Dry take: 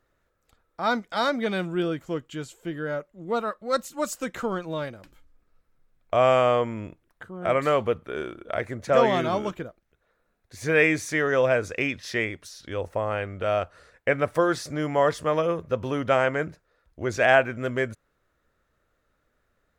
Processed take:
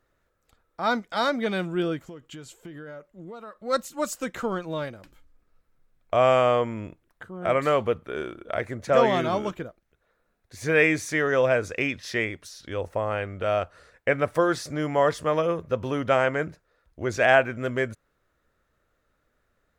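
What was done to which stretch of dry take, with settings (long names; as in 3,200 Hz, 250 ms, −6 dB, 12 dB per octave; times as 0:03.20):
0:02.01–0:03.61: downward compressor 16 to 1, threshold −36 dBFS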